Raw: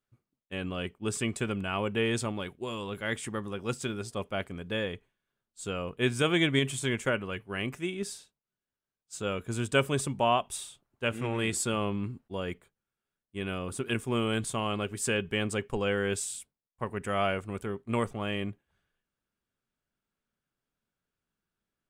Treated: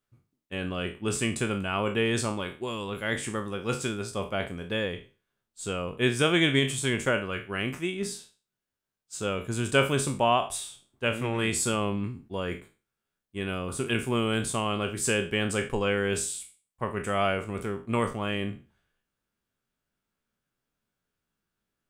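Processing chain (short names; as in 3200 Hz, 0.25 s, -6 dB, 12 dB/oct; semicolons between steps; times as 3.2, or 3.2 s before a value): spectral trails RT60 0.34 s; gain +2 dB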